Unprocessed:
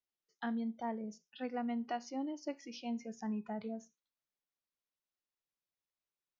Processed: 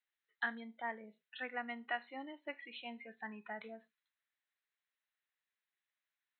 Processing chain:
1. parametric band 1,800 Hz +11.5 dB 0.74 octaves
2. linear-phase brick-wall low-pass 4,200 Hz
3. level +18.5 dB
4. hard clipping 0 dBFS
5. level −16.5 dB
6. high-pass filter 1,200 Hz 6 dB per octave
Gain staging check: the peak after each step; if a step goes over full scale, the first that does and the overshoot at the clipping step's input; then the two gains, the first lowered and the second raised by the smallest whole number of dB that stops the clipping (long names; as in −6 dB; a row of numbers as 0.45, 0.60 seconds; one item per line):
−23.0, −23.0, −4.5, −4.5, −21.0, −23.5 dBFS
no step passes full scale